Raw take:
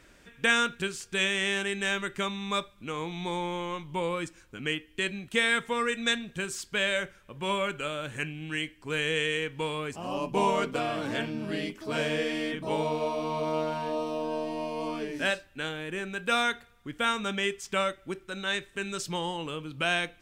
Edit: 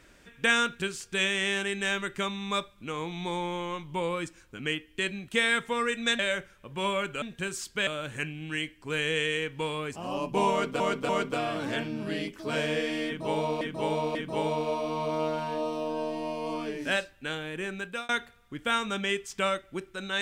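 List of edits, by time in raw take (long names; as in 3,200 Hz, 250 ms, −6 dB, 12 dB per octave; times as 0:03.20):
0:06.19–0:06.84: move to 0:07.87
0:10.51–0:10.80: repeat, 3 plays
0:12.49–0:13.03: repeat, 3 plays
0:16.13–0:16.43: fade out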